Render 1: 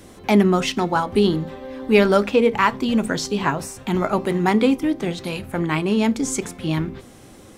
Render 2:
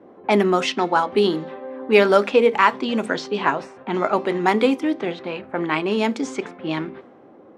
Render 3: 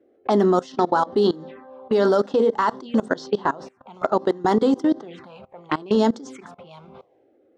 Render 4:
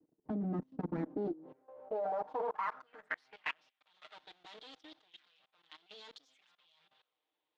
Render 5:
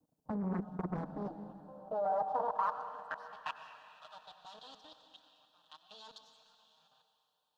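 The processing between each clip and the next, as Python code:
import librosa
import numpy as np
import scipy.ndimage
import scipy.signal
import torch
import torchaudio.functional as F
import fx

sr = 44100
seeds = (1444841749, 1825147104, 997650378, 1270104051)

y1 = fx.env_lowpass(x, sr, base_hz=800.0, full_db=-14.0)
y1 = scipy.signal.sosfilt(scipy.signal.butter(2, 320.0, 'highpass', fs=sr, output='sos'), y1)
y1 = fx.high_shelf(y1, sr, hz=7000.0, db=-9.0)
y1 = y1 * librosa.db_to_amplitude(2.5)
y2 = fx.level_steps(y1, sr, step_db=21)
y2 = fx.env_phaser(y2, sr, low_hz=160.0, high_hz=2400.0, full_db=-26.0)
y2 = y2 * librosa.db_to_amplitude(5.0)
y3 = fx.lower_of_two(y2, sr, delay_ms=6.5)
y3 = fx.filter_sweep_bandpass(y3, sr, from_hz=230.0, to_hz=3500.0, start_s=0.92, end_s=3.82, q=3.5)
y3 = fx.level_steps(y3, sr, step_db=18)
y3 = y3 * librosa.db_to_amplitude(1.0)
y4 = fx.fixed_phaser(y3, sr, hz=880.0, stages=4)
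y4 = fx.rev_plate(y4, sr, seeds[0], rt60_s=2.8, hf_ratio=1.0, predelay_ms=80, drr_db=8.0)
y4 = fx.doppler_dist(y4, sr, depth_ms=0.8)
y4 = y4 * librosa.db_to_amplitude(4.5)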